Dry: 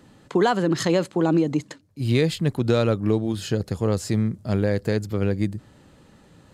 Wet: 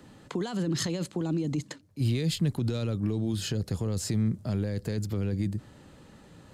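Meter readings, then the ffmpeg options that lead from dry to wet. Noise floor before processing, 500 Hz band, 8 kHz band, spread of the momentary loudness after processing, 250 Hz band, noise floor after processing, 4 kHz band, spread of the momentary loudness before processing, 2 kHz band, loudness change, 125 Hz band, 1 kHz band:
-54 dBFS, -13.0 dB, -1.0 dB, 5 LU, -7.0 dB, -54 dBFS, -4.0 dB, 6 LU, -11.5 dB, -7.0 dB, -4.0 dB, -16.0 dB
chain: -filter_complex "[0:a]alimiter=limit=0.133:level=0:latency=1:release=17,acrossover=split=270|3000[s0][s1][s2];[s1]acompressor=threshold=0.0141:ratio=6[s3];[s0][s3][s2]amix=inputs=3:normalize=0"

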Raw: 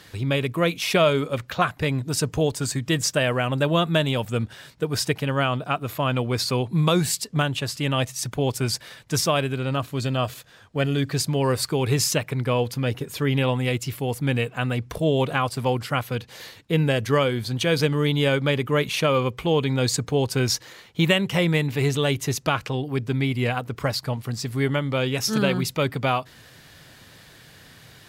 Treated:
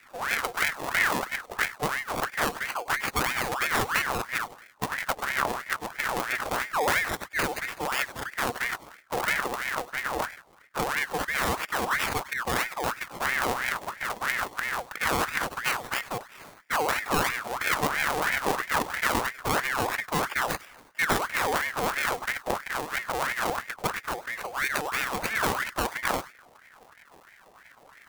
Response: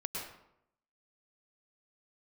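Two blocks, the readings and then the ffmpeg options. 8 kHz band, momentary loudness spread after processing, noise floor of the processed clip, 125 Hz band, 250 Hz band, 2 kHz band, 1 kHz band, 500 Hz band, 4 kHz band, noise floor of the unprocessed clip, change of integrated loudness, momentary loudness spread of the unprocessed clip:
-5.0 dB, 6 LU, -56 dBFS, -18.5 dB, -13.0 dB, +3.0 dB, +1.0 dB, -9.5 dB, -7.0 dB, -50 dBFS, -4.5 dB, 6 LU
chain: -filter_complex "[0:a]acrusher=samples=39:mix=1:aa=0.000001:lfo=1:lforange=39:lforate=0.23,asplit=2[s0][s1];[1:a]atrim=start_sample=2205,atrim=end_sample=4410,highshelf=f=4600:g=12[s2];[s1][s2]afir=irnorm=-1:irlink=0,volume=0.631[s3];[s0][s3]amix=inputs=2:normalize=0,aeval=exprs='val(0)*sin(2*PI*1300*n/s+1300*0.55/3*sin(2*PI*3*n/s))':c=same,volume=0.473"

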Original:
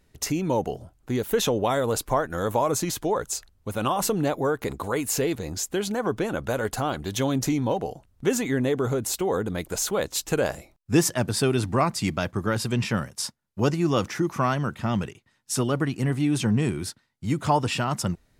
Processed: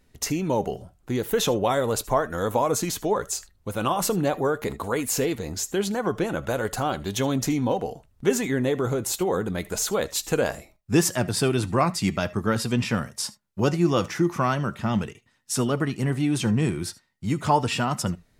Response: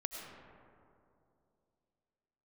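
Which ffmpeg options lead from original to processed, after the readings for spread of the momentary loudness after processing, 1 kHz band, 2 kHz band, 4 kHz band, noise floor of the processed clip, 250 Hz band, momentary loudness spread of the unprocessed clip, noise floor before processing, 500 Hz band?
7 LU, +1.0 dB, +0.5 dB, +0.5 dB, -64 dBFS, +0.5 dB, 6 LU, -65 dBFS, +0.5 dB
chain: -filter_complex "[0:a]flanger=delay=3.9:depth=2.2:regen=78:speed=0.39:shape=triangular[s0];[1:a]atrim=start_sample=2205,atrim=end_sample=3528[s1];[s0][s1]afir=irnorm=-1:irlink=0,volume=2.37"

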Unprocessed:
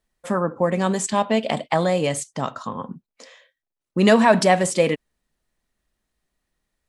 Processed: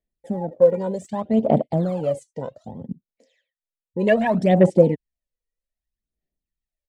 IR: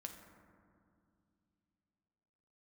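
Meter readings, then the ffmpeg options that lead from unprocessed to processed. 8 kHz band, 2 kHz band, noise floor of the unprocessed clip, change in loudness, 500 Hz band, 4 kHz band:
under -20 dB, -7.0 dB, under -85 dBFS, 0.0 dB, +1.5 dB, -14.0 dB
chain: -filter_complex "[0:a]firequalizer=gain_entry='entry(630,0);entry(1200,-24);entry(1800,-3)':delay=0.05:min_phase=1,afwtdn=0.0398,aphaser=in_gain=1:out_gain=1:delay=2.1:decay=0.73:speed=0.64:type=sinusoidal,acrossover=split=3700[s0][s1];[s1]acompressor=threshold=0.0112:ratio=4:attack=1:release=60[s2];[s0][s2]amix=inputs=2:normalize=0,volume=0.794"

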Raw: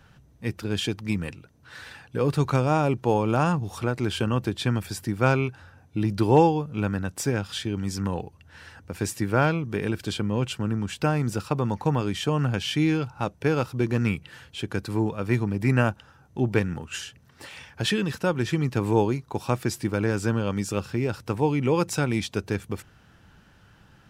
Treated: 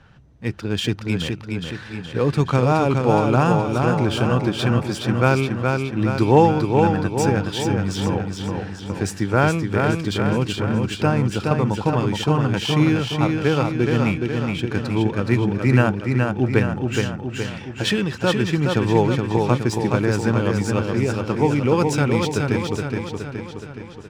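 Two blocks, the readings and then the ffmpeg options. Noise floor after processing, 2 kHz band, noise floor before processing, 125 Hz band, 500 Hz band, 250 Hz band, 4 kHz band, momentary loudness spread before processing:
-36 dBFS, +5.5 dB, -56 dBFS, +6.0 dB, +6.0 dB, +6.0 dB, +5.5 dB, 11 LU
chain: -af "aecho=1:1:420|840|1260|1680|2100|2520|2940|3360:0.631|0.36|0.205|0.117|0.0666|0.038|0.0216|0.0123,adynamicsmooth=sensitivity=7.5:basefreq=5600,volume=1.58"

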